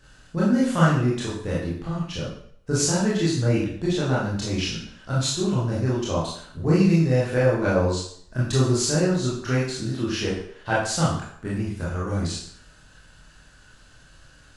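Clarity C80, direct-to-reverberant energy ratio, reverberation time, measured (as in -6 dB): 6.0 dB, -7.5 dB, 0.60 s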